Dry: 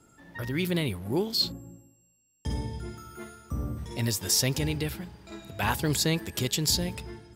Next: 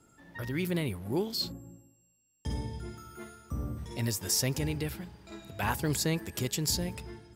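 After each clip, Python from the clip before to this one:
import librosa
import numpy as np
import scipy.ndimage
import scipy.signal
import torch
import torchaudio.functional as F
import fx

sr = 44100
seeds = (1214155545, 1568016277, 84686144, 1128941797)

y = fx.dynamic_eq(x, sr, hz=3600.0, q=1.8, threshold_db=-44.0, ratio=4.0, max_db=-6)
y = y * 10.0 ** (-3.0 / 20.0)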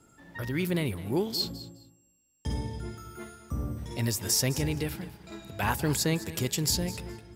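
y = fx.echo_feedback(x, sr, ms=208, feedback_pct=18, wet_db=-16)
y = y * 10.0 ** (2.5 / 20.0)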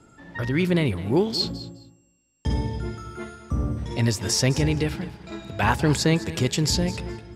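y = fx.air_absorb(x, sr, metres=72.0)
y = y * 10.0 ** (7.5 / 20.0)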